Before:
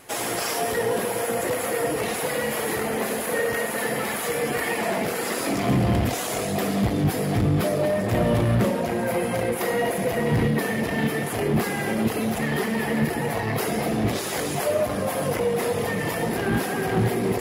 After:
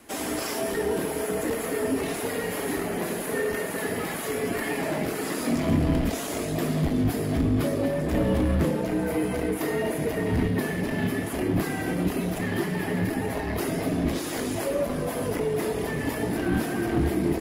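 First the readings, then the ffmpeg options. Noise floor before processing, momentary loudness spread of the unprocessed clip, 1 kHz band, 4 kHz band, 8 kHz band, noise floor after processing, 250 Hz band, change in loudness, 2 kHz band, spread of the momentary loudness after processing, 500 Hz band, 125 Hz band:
-28 dBFS, 4 LU, -6.0 dB, -5.0 dB, -5.0 dB, -32 dBFS, -0.5 dB, -2.5 dB, -5.0 dB, 5 LU, -3.5 dB, -3.0 dB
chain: -filter_complex "[0:a]afreqshift=-42,equalizer=f=270:w=2.4:g=10,asplit=2[a][b];[b]adelay=26,volume=-13dB[c];[a][c]amix=inputs=2:normalize=0,volume=-5dB"

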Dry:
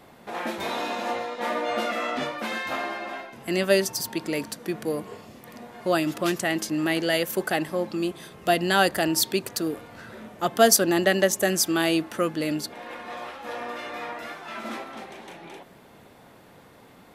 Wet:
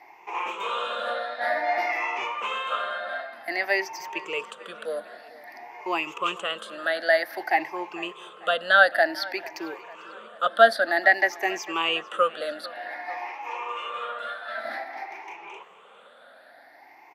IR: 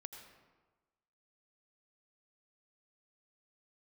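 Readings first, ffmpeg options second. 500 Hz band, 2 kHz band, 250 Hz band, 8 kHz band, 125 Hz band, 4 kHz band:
-1.5 dB, +5.5 dB, -13.0 dB, -18.0 dB, under -20 dB, -2.5 dB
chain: -filter_complex "[0:a]afftfilt=real='re*pow(10,19/40*sin(2*PI*(0.74*log(max(b,1)*sr/1024/100)/log(2)-(0.53)*(pts-256)/sr)))':imag='im*pow(10,19/40*sin(2*PI*(0.74*log(max(b,1)*sr/1024/100)/log(2)-(0.53)*(pts-256)/sr)))':win_size=1024:overlap=0.75,highpass=200,acrossover=split=530 3600:gain=0.0794 1 0.178[a][b][c];[a][b][c]amix=inputs=3:normalize=0,acrossover=split=4600[d][e];[e]acompressor=threshold=-45dB:ratio=4:attack=1:release=60[f];[d][f]amix=inputs=2:normalize=0,asplit=2[g][h];[h]adelay=447,lowpass=f=4k:p=1,volume=-20dB,asplit=2[i][j];[j]adelay=447,lowpass=f=4k:p=1,volume=0.54,asplit=2[k][l];[l]adelay=447,lowpass=f=4k:p=1,volume=0.54,asplit=2[m][n];[n]adelay=447,lowpass=f=4k:p=1,volume=0.54[o];[g][i][k][m][o]amix=inputs=5:normalize=0"

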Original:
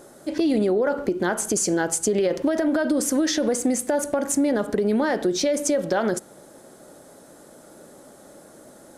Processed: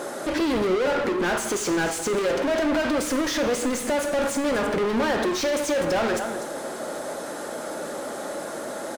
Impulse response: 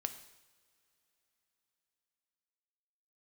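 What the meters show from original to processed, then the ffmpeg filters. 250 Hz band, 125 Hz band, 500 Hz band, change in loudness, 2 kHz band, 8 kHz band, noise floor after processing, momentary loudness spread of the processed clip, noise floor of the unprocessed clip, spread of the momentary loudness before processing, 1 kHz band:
-3.0 dB, -2.0 dB, 0.0 dB, -2.5 dB, +4.0 dB, -4.5 dB, -34 dBFS, 9 LU, -49 dBFS, 3 LU, +3.5 dB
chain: -filter_complex "[0:a]aecho=1:1:246:0.0708,asplit=2[a][b];[b]highpass=f=720:p=1,volume=34dB,asoftclip=type=tanh:threshold=-11dB[c];[a][c]amix=inputs=2:normalize=0,lowpass=f=2.9k:p=1,volume=-6dB[d];[1:a]atrim=start_sample=2205[e];[d][e]afir=irnorm=-1:irlink=0,volume=-5.5dB"

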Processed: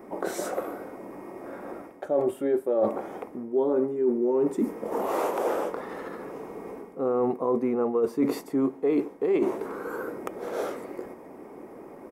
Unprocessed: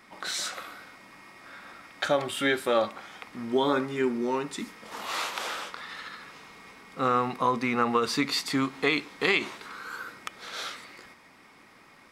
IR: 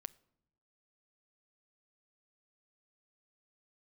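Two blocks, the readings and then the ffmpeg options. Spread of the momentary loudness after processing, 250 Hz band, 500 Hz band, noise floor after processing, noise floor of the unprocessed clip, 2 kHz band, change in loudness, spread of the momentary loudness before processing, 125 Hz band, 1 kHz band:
16 LU, +3.5 dB, +5.0 dB, -47 dBFS, -55 dBFS, -12.0 dB, +0.5 dB, 20 LU, -3.5 dB, -3.5 dB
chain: -af "firequalizer=gain_entry='entry(120,0);entry(380,15);entry(1300,-8);entry(4000,-24);entry(5700,-15);entry(13000,-1)':delay=0.05:min_phase=1,areverse,acompressor=threshold=-28dB:ratio=12,areverse,volume=6.5dB"

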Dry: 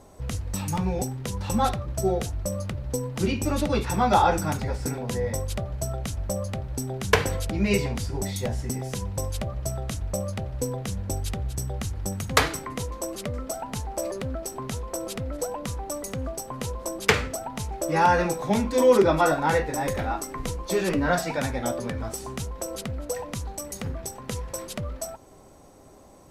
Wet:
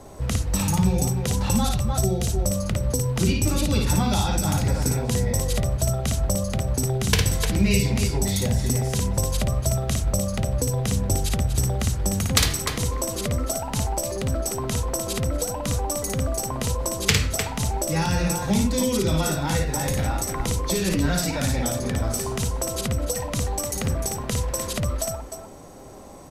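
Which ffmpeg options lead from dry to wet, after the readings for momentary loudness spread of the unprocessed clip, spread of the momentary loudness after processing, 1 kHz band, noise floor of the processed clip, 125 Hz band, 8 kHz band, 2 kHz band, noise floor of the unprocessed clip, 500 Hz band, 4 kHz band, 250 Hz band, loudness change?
12 LU, 5 LU, -4.0 dB, -33 dBFS, +7.0 dB, +8.0 dB, -1.0 dB, -49 dBFS, -1.5 dB, +6.5 dB, +4.0 dB, +3.5 dB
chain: -filter_complex "[0:a]aecho=1:1:56|302:0.631|0.316,acrossover=split=210|3000[a][b][c];[b]acompressor=threshold=-34dB:ratio=10[d];[a][d][c]amix=inputs=3:normalize=0,volume=6.5dB"

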